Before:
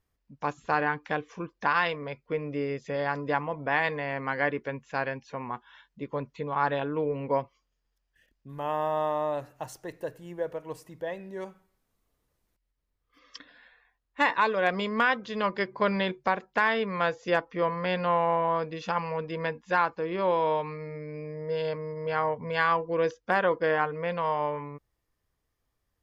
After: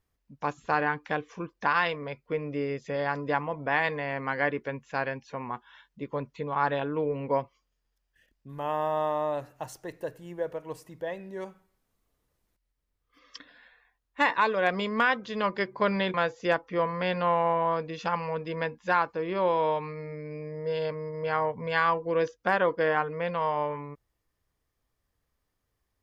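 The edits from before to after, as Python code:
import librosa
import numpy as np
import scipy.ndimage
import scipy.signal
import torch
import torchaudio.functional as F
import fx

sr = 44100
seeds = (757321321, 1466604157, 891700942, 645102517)

y = fx.edit(x, sr, fx.cut(start_s=16.14, length_s=0.83), tone=tone)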